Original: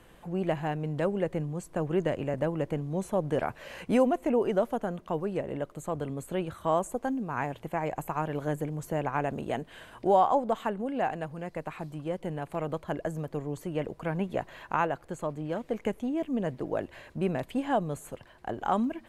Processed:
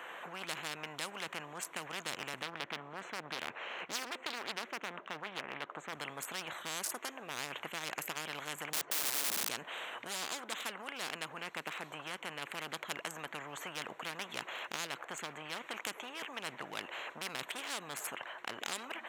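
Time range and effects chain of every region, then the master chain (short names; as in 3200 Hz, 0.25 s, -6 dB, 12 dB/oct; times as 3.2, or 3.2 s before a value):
2.42–5.93 HPF 110 Hz 6 dB/oct + tape spacing loss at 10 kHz 20 dB + Doppler distortion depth 0.78 ms
8.73–9.49 tape spacing loss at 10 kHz 45 dB + wrapped overs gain 35 dB
whole clip: Wiener smoothing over 9 samples; HPF 980 Hz 12 dB/oct; spectral compressor 10:1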